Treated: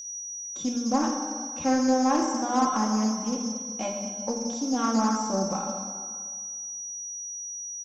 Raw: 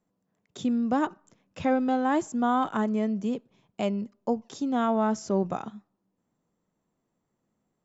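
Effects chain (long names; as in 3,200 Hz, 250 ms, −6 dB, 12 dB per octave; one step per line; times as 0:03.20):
parametric band 1,000 Hz +5 dB 0.76 octaves
notch filter 2,000 Hz, Q 17
comb filter 3.7 ms, depth 71%
steady tone 5,800 Hz −31 dBFS
in parallel at −4 dB: soft clipping −19 dBFS, distortion −12 dB
on the sum: echo through a band-pass that steps 117 ms, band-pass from 180 Hz, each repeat 0.7 octaves, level −11 dB
dense smooth reverb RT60 1.8 s, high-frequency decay 0.75×, DRR 0.5 dB
highs frequency-modulated by the lows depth 0.17 ms
level −9 dB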